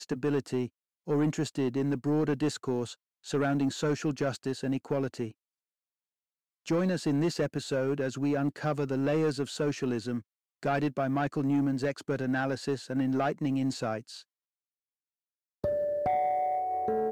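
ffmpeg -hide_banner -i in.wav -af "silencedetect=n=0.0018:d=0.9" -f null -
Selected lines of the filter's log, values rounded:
silence_start: 5.32
silence_end: 6.66 | silence_duration: 1.34
silence_start: 14.23
silence_end: 15.64 | silence_duration: 1.41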